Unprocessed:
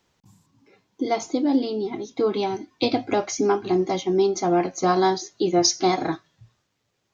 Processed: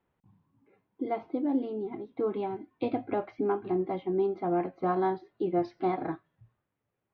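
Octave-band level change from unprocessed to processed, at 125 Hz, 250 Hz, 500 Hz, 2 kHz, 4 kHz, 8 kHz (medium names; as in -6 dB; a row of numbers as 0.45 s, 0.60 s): -7.5 dB, -7.5 dB, -7.5 dB, -12.0 dB, under -25 dB, no reading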